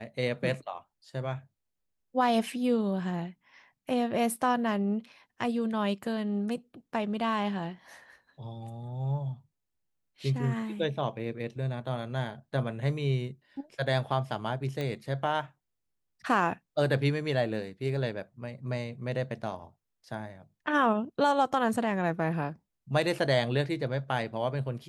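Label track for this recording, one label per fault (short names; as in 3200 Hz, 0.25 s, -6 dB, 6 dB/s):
14.810000	14.810000	pop -21 dBFS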